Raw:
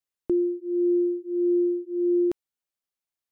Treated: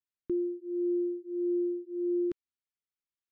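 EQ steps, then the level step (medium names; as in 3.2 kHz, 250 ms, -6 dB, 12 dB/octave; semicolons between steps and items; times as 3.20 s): Butterworth band-stop 680 Hz, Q 0.97; distance through air 130 m; -6.0 dB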